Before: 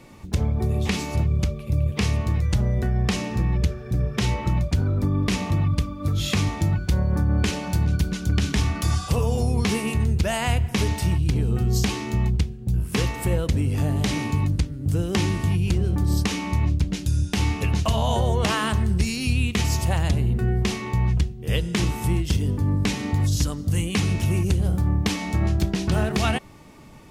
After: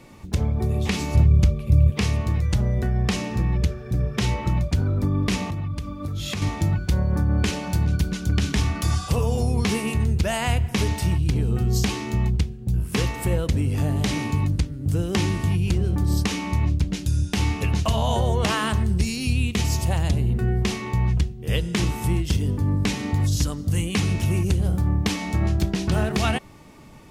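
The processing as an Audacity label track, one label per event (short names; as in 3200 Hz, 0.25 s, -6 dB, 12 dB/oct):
1.000000	1.900000	low shelf 170 Hz +8 dB
5.500000	6.420000	compressor 5:1, threshold -25 dBFS
18.830000	20.290000	bell 1500 Hz -3.5 dB 1.6 oct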